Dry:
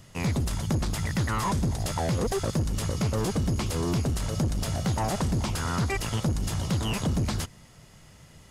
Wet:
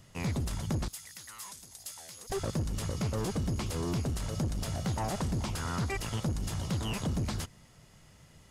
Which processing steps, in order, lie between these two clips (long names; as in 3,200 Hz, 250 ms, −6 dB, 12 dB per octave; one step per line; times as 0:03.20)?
0:00.88–0:02.30: first-order pre-emphasis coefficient 0.97
level −5.5 dB